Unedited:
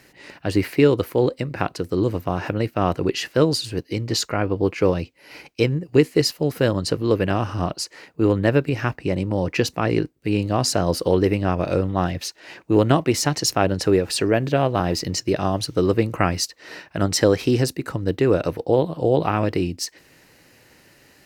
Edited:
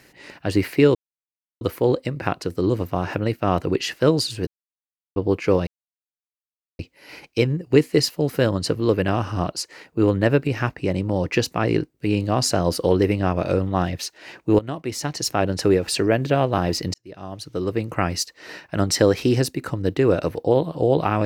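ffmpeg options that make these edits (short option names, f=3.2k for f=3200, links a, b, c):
-filter_complex "[0:a]asplit=7[a][b][c][d][e][f][g];[a]atrim=end=0.95,asetpts=PTS-STARTPTS,afade=t=out:st=0.946:d=0.004:c=hsin,apad=pad_dur=0.66[h];[b]atrim=start=0.95:end=3.81,asetpts=PTS-STARTPTS,afade=t=in:d=0.004:c=hsin,afade=t=out:st=2.856:d=0.004:c=hsin[i];[c]atrim=start=3.81:end=4.5,asetpts=PTS-STARTPTS,volume=0[j];[d]atrim=start=4.5:end=5.01,asetpts=PTS-STARTPTS,afade=t=in:d=0.004:c=hsin,afade=t=out:st=0.506:d=0.004:c=hsin,apad=pad_dur=1.12[k];[e]atrim=start=5.01:end=12.81,asetpts=PTS-STARTPTS,afade=t=in:d=0.004:c=hsin,afade=t=out:st=7.796:d=0.004:c=hsin:silence=0.141254[l];[f]atrim=start=12.81:end=15.16,asetpts=PTS-STARTPTS,afade=t=in:d=1.06:silence=0.141254,afade=t=out:st=2.346:d=0.004:c=hsin[m];[g]atrim=start=15.16,asetpts=PTS-STARTPTS,afade=t=in:d=1.42[n];[h][i][j][k][l][m][n]concat=n=7:v=0:a=1"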